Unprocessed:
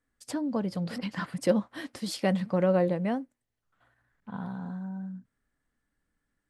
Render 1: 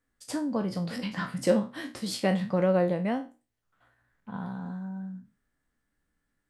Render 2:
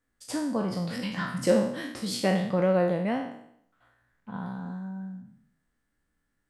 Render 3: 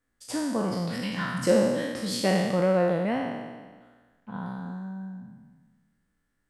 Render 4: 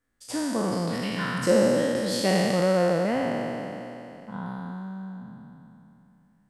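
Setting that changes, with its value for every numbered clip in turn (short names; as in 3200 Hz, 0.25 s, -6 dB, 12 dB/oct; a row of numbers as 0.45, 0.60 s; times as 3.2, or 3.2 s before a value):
spectral trails, RT60: 0.3, 0.69, 1.44, 3.09 s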